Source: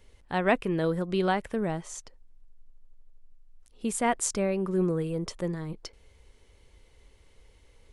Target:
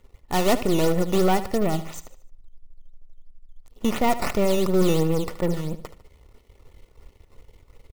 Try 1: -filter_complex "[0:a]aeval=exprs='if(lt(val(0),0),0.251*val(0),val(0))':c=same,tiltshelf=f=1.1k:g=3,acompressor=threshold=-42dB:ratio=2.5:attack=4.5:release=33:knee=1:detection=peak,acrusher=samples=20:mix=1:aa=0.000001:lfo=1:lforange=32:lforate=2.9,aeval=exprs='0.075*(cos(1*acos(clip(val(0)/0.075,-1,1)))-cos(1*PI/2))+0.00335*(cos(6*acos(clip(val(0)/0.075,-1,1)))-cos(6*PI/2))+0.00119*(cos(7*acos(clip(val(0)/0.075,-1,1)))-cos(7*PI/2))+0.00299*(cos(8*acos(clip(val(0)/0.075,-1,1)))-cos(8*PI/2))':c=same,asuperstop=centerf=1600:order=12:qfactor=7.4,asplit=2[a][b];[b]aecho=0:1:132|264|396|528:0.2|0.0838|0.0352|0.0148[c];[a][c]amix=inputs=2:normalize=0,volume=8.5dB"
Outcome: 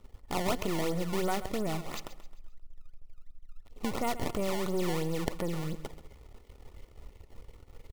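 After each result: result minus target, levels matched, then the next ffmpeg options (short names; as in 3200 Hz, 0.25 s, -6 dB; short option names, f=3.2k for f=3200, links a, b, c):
echo 57 ms late; compressor: peak gain reduction +14 dB; decimation with a swept rate: distortion +7 dB
-filter_complex "[0:a]aeval=exprs='if(lt(val(0),0),0.251*val(0),val(0))':c=same,tiltshelf=f=1.1k:g=3,acompressor=threshold=-42dB:ratio=2.5:attack=4.5:release=33:knee=1:detection=peak,acrusher=samples=20:mix=1:aa=0.000001:lfo=1:lforange=32:lforate=2.9,aeval=exprs='0.075*(cos(1*acos(clip(val(0)/0.075,-1,1)))-cos(1*PI/2))+0.00335*(cos(6*acos(clip(val(0)/0.075,-1,1)))-cos(6*PI/2))+0.00119*(cos(7*acos(clip(val(0)/0.075,-1,1)))-cos(7*PI/2))+0.00299*(cos(8*acos(clip(val(0)/0.075,-1,1)))-cos(8*PI/2))':c=same,asuperstop=centerf=1600:order=12:qfactor=7.4,asplit=2[a][b];[b]aecho=0:1:75|150|225|300:0.2|0.0838|0.0352|0.0148[c];[a][c]amix=inputs=2:normalize=0,volume=8.5dB"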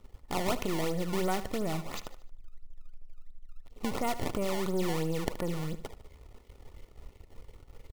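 compressor: peak gain reduction +14 dB; decimation with a swept rate: distortion +7 dB
-filter_complex "[0:a]aeval=exprs='if(lt(val(0),0),0.251*val(0),val(0))':c=same,tiltshelf=f=1.1k:g=3,acrusher=samples=20:mix=1:aa=0.000001:lfo=1:lforange=32:lforate=2.9,aeval=exprs='0.075*(cos(1*acos(clip(val(0)/0.075,-1,1)))-cos(1*PI/2))+0.00335*(cos(6*acos(clip(val(0)/0.075,-1,1)))-cos(6*PI/2))+0.00119*(cos(7*acos(clip(val(0)/0.075,-1,1)))-cos(7*PI/2))+0.00299*(cos(8*acos(clip(val(0)/0.075,-1,1)))-cos(8*PI/2))':c=same,asuperstop=centerf=1600:order=12:qfactor=7.4,asplit=2[a][b];[b]aecho=0:1:75|150|225|300:0.2|0.0838|0.0352|0.0148[c];[a][c]amix=inputs=2:normalize=0,volume=8.5dB"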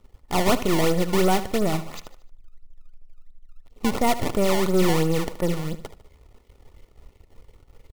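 decimation with a swept rate: distortion +7 dB
-filter_complex "[0:a]aeval=exprs='if(lt(val(0),0),0.251*val(0),val(0))':c=same,tiltshelf=f=1.1k:g=3,acrusher=samples=8:mix=1:aa=0.000001:lfo=1:lforange=12.8:lforate=2.9,aeval=exprs='0.075*(cos(1*acos(clip(val(0)/0.075,-1,1)))-cos(1*PI/2))+0.00335*(cos(6*acos(clip(val(0)/0.075,-1,1)))-cos(6*PI/2))+0.00119*(cos(7*acos(clip(val(0)/0.075,-1,1)))-cos(7*PI/2))+0.00299*(cos(8*acos(clip(val(0)/0.075,-1,1)))-cos(8*PI/2))':c=same,asuperstop=centerf=1600:order=12:qfactor=7.4,asplit=2[a][b];[b]aecho=0:1:75|150|225|300:0.2|0.0838|0.0352|0.0148[c];[a][c]amix=inputs=2:normalize=0,volume=8.5dB"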